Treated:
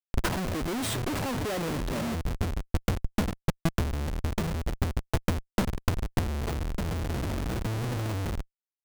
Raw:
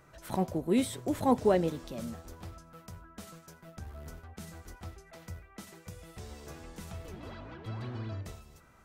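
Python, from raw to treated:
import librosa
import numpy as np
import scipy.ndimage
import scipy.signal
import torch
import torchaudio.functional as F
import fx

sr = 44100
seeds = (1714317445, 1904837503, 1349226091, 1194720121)

y = fx.schmitt(x, sr, flips_db=-43.0)
y = fx.transient(y, sr, attack_db=10, sustain_db=-6)
y = y * 10.0 ** (5.5 / 20.0)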